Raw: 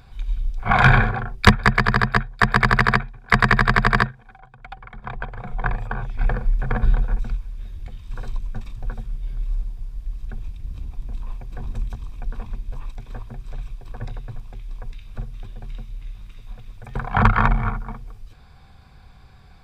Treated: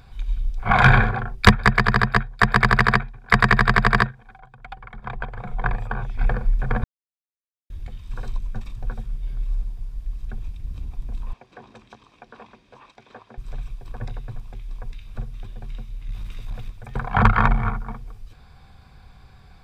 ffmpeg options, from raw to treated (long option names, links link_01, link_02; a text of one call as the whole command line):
ffmpeg -i in.wav -filter_complex "[0:a]asettb=1/sr,asplit=3[link_01][link_02][link_03];[link_01]atrim=end=11.334[link_04];[link_02]atrim=start=11.33:end=13.38,asetpts=PTS-STARTPTS,afade=type=in:duration=0.004:curve=qsin,afade=type=out:start_time=2.046:duration=0.004:curve=qsin,highpass=330,lowpass=5200[link_05];[link_03]atrim=start=13.376[link_06];[link_04][link_05]acrossfade=duration=0.004:curve1=hsin:curve2=qsin[link_07];[link_07][link_06]acrossfade=duration=0.004:curve1=qsin:curve2=hsin,asettb=1/sr,asplit=3[link_08][link_09][link_10];[link_08]atrim=end=16.084[link_11];[link_09]atrim=start=16.08:end=16.7,asetpts=PTS-STARTPTS,afade=type=in:duration=0.004:curve=qsin,afade=type=out:start_time=0.616:duration=0.004:curve=qsin,aeval=exprs='0.0596*sin(PI/2*1.58*val(0)/0.0596)':channel_layout=same[link_12];[link_10]atrim=start=16.696[link_13];[link_11][link_12]acrossfade=duration=0.004:curve1=hsin:curve2=qsin[link_14];[link_14][link_13]acrossfade=duration=0.004:curve1=qsin:curve2=hsin,asplit=3[link_15][link_16][link_17];[link_15]atrim=end=6.84,asetpts=PTS-STARTPTS,afade=type=out:start_time=6.836:duration=0.004:curve=hsin[link_18];[link_16]atrim=start=6.84:end=7.7,asetpts=PTS-STARTPTS,volume=0[link_19];[link_17]atrim=start=7.7,asetpts=PTS-STARTPTS,afade=type=in:duration=0.004:curve=hsin[link_20];[link_18][link_19][link_20]concat=n=3:v=0:a=1" out.wav